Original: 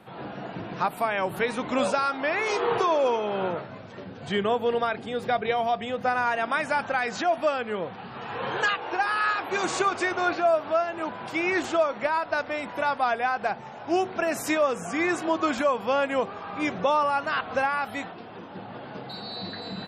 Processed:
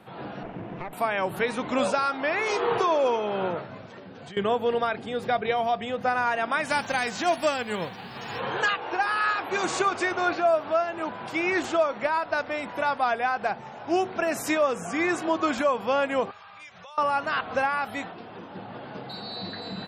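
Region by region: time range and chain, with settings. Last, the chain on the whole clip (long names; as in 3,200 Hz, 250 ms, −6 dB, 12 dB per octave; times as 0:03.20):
0:00.43–0:00.93: lower of the sound and its delayed copy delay 0.32 ms + low-pass filter 1,800 Hz + downward compressor, threshold −30 dBFS
0:03.86–0:04.37: high-pass filter 160 Hz 6 dB per octave + downward compressor 10 to 1, threshold −39 dBFS
0:06.64–0:08.39: spectral envelope flattened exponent 0.6 + notch filter 1,300 Hz
0:16.31–0:16.98: high-pass filter 52 Hz + guitar amp tone stack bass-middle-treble 10-0-10 + downward compressor 5 to 1, threshold −43 dBFS
whole clip: no processing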